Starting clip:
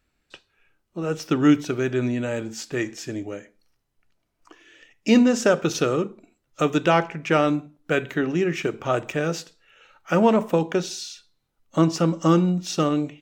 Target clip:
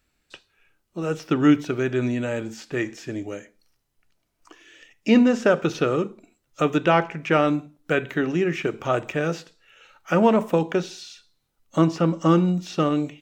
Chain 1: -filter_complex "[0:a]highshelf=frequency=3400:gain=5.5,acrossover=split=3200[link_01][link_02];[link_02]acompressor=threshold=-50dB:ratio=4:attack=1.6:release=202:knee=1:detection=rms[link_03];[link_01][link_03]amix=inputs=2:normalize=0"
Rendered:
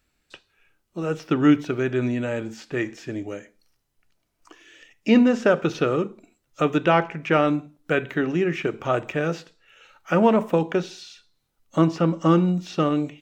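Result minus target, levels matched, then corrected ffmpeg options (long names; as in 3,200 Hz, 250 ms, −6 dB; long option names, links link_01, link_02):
downward compressor: peak gain reduction +4.5 dB
-filter_complex "[0:a]highshelf=frequency=3400:gain=5.5,acrossover=split=3200[link_01][link_02];[link_02]acompressor=threshold=-44dB:ratio=4:attack=1.6:release=202:knee=1:detection=rms[link_03];[link_01][link_03]amix=inputs=2:normalize=0"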